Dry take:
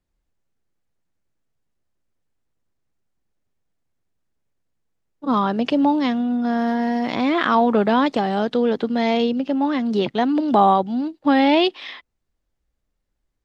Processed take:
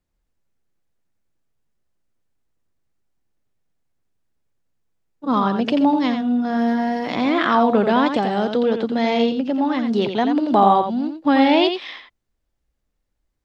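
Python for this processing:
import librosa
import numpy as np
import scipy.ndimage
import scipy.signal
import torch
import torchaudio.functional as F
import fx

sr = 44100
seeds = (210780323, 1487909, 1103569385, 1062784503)

y = x + 10.0 ** (-7.0 / 20.0) * np.pad(x, (int(86 * sr / 1000.0), 0))[:len(x)]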